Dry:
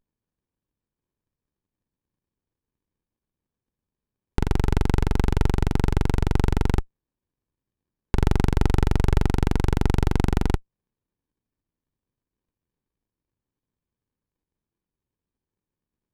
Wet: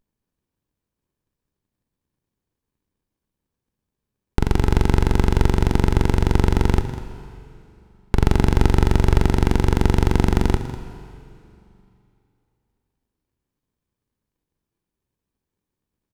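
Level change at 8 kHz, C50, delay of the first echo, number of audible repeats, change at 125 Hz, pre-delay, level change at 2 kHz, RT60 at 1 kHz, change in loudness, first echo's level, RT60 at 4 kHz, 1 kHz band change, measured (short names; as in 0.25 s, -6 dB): +4.5 dB, 9.5 dB, 0.198 s, 1, +3.5 dB, 7 ms, +4.5 dB, 2.7 s, +4.0 dB, -14.5 dB, 2.5 s, +4.5 dB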